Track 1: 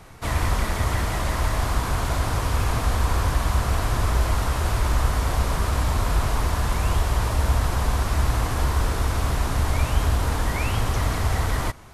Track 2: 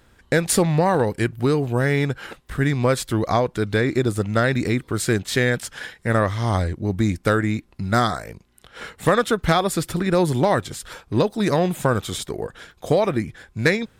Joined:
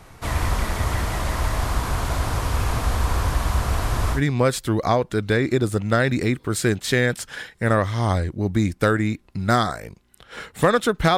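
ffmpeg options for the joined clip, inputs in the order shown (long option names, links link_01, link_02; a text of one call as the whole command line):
ffmpeg -i cue0.wav -i cue1.wav -filter_complex "[0:a]asettb=1/sr,asplit=3[link_01][link_02][link_03];[link_01]atrim=end=3.484[link_04];[link_02]atrim=start=3.48:end=4.22,asetpts=PTS-STARTPTS,afade=type=in:duration=0.004:curve=qsin,afade=type=out:start_time=0.736:duration=0.004:curve=qsin,asoftclip=type=hard:threshold=-12dB[link_05];[link_03]atrim=start=4.216[link_06];[link_04][link_05]acrossfade=duration=0.004:curve1=hsin:curve2=qsin[link_07];[link_07][link_06]acrossfade=duration=0.004:curve1=qsin:curve2=hsin,apad=whole_dur=11.17,atrim=end=11.17,atrim=end=4.22,asetpts=PTS-STARTPTS[link_08];[1:a]atrim=start=2.56:end=9.61,asetpts=PTS-STARTPTS[link_09];[link_08][link_09]acrossfade=duration=0.1:curve1=tri:curve2=tri" out.wav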